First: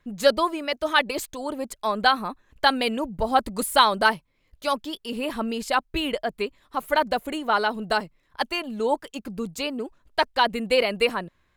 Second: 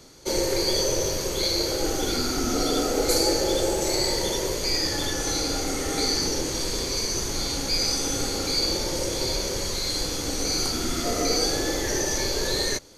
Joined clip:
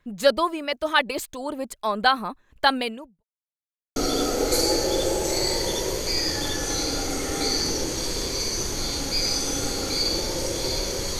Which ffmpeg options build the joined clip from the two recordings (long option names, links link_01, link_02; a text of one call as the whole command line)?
ffmpeg -i cue0.wav -i cue1.wav -filter_complex "[0:a]apad=whole_dur=11.19,atrim=end=11.19,asplit=2[link_01][link_02];[link_01]atrim=end=3.24,asetpts=PTS-STARTPTS,afade=type=out:start_time=2.77:duration=0.47:curve=qua[link_03];[link_02]atrim=start=3.24:end=3.96,asetpts=PTS-STARTPTS,volume=0[link_04];[1:a]atrim=start=2.53:end=9.76,asetpts=PTS-STARTPTS,afade=type=in:duration=0.004:curve=hsin[link_05];[link_03][link_04][link_05]concat=n=3:v=0:a=1" out.wav